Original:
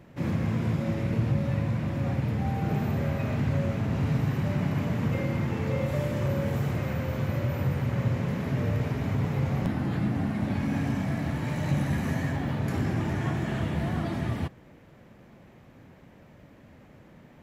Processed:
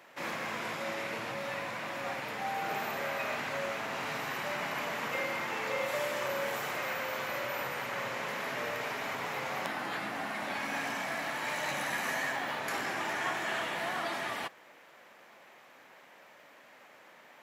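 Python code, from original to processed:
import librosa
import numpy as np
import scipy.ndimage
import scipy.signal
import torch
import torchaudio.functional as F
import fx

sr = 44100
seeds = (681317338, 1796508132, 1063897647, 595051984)

y = scipy.signal.sosfilt(scipy.signal.butter(2, 840.0, 'highpass', fs=sr, output='sos'), x)
y = F.gain(torch.from_numpy(y), 6.0).numpy()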